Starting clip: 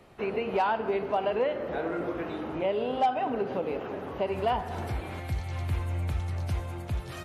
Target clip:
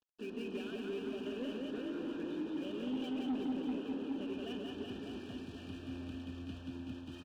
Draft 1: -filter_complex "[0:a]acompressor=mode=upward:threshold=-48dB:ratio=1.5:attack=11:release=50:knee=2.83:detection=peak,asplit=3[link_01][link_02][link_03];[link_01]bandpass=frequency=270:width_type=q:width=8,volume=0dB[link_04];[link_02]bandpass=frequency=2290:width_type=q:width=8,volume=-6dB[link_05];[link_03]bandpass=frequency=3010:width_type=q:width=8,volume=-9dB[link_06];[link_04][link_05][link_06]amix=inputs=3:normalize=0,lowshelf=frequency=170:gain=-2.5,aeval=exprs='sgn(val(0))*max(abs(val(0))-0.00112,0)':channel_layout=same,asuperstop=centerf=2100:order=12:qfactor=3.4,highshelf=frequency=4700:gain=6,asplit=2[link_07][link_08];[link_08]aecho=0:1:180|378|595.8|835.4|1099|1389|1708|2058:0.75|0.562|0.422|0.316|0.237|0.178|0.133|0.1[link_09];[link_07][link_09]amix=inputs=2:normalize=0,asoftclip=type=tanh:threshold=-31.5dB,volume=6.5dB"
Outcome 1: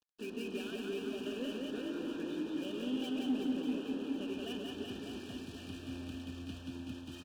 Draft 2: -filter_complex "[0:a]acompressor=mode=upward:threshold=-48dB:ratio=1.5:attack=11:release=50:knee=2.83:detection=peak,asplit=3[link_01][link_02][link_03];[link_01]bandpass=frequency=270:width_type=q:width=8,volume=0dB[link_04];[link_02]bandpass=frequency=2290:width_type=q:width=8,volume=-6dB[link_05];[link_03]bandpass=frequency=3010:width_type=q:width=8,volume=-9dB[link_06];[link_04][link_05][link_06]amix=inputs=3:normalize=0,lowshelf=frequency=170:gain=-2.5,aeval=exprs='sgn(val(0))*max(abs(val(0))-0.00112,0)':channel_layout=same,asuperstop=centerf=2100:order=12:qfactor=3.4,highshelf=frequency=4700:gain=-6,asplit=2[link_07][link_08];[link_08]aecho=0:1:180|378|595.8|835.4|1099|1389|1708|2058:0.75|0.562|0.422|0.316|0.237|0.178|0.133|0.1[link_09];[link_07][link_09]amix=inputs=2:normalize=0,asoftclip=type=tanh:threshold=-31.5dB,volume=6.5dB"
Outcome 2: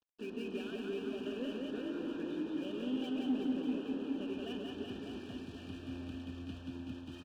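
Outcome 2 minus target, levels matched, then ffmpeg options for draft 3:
soft clipping: distortion −8 dB
-filter_complex "[0:a]acompressor=mode=upward:threshold=-48dB:ratio=1.5:attack=11:release=50:knee=2.83:detection=peak,asplit=3[link_01][link_02][link_03];[link_01]bandpass=frequency=270:width_type=q:width=8,volume=0dB[link_04];[link_02]bandpass=frequency=2290:width_type=q:width=8,volume=-6dB[link_05];[link_03]bandpass=frequency=3010:width_type=q:width=8,volume=-9dB[link_06];[link_04][link_05][link_06]amix=inputs=3:normalize=0,lowshelf=frequency=170:gain=-2.5,aeval=exprs='sgn(val(0))*max(abs(val(0))-0.00112,0)':channel_layout=same,asuperstop=centerf=2100:order=12:qfactor=3.4,highshelf=frequency=4700:gain=-6,asplit=2[link_07][link_08];[link_08]aecho=0:1:180|378|595.8|835.4|1099|1389|1708|2058:0.75|0.562|0.422|0.316|0.237|0.178|0.133|0.1[link_09];[link_07][link_09]amix=inputs=2:normalize=0,asoftclip=type=tanh:threshold=-37.5dB,volume=6.5dB"

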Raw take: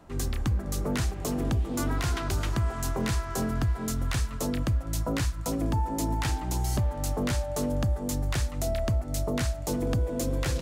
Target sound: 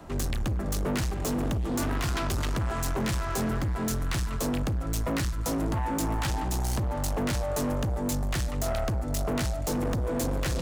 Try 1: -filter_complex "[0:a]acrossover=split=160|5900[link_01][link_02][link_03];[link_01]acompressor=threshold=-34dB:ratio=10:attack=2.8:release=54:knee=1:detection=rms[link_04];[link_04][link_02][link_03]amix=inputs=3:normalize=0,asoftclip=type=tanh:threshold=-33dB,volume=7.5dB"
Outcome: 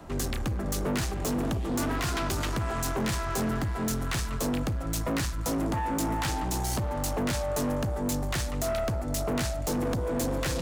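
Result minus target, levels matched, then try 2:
downward compressor: peak gain reduction +7 dB
-filter_complex "[0:a]acrossover=split=160|5900[link_01][link_02][link_03];[link_01]acompressor=threshold=-26.5dB:ratio=10:attack=2.8:release=54:knee=1:detection=rms[link_04];[link_04][link_02][link_03]amix=inputs=3:normalize=0,asoftclip=type=tanh:threshold=-33dB,volume=7.5dB"

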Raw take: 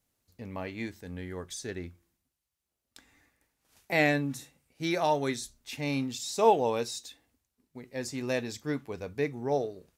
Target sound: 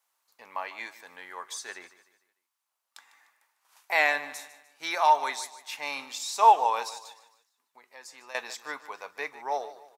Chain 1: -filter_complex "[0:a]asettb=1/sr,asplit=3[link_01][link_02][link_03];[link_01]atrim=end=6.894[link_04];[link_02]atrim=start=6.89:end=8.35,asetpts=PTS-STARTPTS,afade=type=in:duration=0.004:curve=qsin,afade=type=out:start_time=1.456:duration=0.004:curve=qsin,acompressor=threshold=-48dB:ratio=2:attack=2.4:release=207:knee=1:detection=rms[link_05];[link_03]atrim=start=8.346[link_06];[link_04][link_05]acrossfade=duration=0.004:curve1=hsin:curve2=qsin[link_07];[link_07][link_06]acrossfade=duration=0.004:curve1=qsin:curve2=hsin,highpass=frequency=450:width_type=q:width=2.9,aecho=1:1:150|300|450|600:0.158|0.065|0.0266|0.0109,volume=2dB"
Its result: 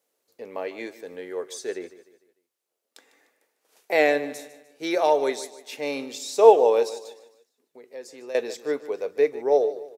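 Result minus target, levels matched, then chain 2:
500 Hz band +11.0 dB
-filter_complex "[0:a]asettb=1/sr,asplit=3[link_01][link_02][link_03];[link_01]atrim=end=6.894[link_04];[link_02]atrim=start=6.89:end=8.35,asetpts=PTS-STARTPTS,afade=type=in:duration=0.004:curve=qsin,afade=type=out:start_time=1.456:duration=0.004:curve=qsin,acompressor=threshold=-48dB:ratio=2:attack=2.4:release=207:knee=1:detection=rms[link_05];[link_03]atrim=start=8.346[link_06];[link_04][link_05]acrossfade=duration=0.004:curve1=hsin:curve2=qsin[link_07];[link_07][link_06]acrossfade=duration=0.004:curve1=qsin:curve2=hsin,highpass=frequency=980:width_type=q:width=2.9,aecho=1:1:150|300|450|600:0.158|0.065|0.0266|0.0109,volume=2dB"

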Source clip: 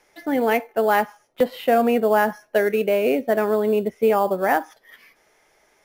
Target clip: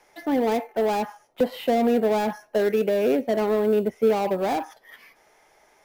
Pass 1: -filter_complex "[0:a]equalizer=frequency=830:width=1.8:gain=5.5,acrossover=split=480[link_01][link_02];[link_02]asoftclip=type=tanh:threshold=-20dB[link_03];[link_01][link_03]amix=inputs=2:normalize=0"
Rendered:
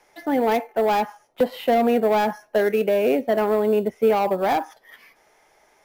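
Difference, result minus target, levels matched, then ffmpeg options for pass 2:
soft clipping: distortion −5 dB
-filter_complex "[0:a]equalizer=frequency=830:width=1.8:gain=5.5,acrossover=split=480[link_01][link_02];[link_02]asoftclip=type=tanh:threshold=-28.5dB[link_03];[link_01][link_03]amix=inputs=2:normalize=0"

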